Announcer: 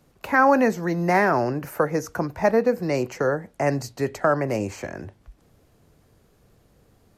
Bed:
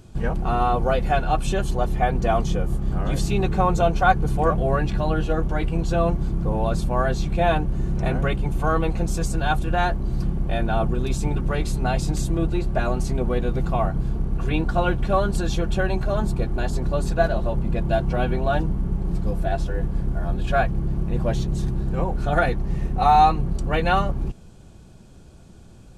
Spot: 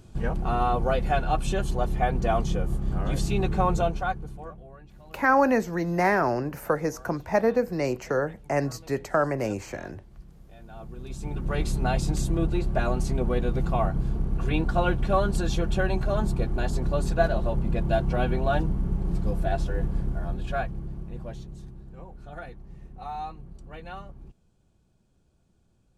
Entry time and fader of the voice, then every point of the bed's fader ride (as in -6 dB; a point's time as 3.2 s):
4.90 s, -3.0 dB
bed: 3.76 s -3.5 dB
4.73 s -27 dB
10.51 s -27 dB
11.6 s -2.5 dB
19.92 s -2.5 dB
21.85 s -20 dB